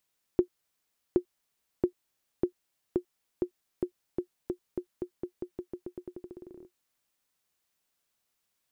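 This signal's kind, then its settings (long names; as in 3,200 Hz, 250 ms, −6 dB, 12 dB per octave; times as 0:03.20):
bouncing ball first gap 0.77 s, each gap 0.88, 358 Hz, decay 91 ms −12 dBFS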